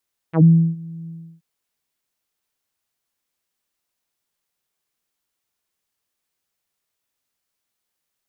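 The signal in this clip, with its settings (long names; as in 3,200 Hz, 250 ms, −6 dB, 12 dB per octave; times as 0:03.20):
subtractive voice saw E3 24 dB per octave, low-pass 200 Hz, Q 1.4, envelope 4 octaves, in 0.09 s, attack 95 ms, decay 0.33 s, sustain −24 dB, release 0.33 s, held 0.75 s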